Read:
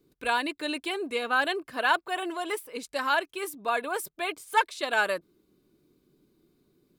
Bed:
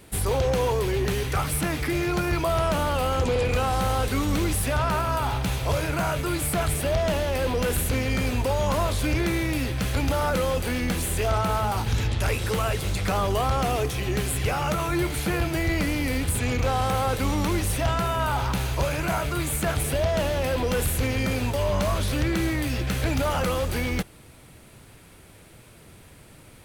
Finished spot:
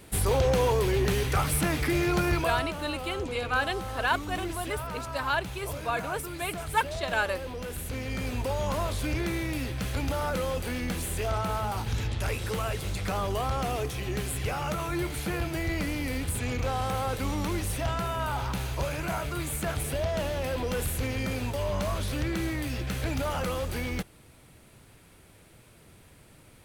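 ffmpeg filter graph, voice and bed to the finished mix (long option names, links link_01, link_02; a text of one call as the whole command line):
ffmpeg -i stem1.wav -i stem2.wav -filter_complex "[0:a]adelay=2200,volume=-2.5dB[link_01];[1:a]volume=6dB,afade=type=out:start_time=2.29:duration=0.41:silence=0.266073,afade=type=in:start_time=7.73:duration=0.75:silence=0.473151[link_02];[link_01][link_02]amix=inputs=2:normalize=0" out.wav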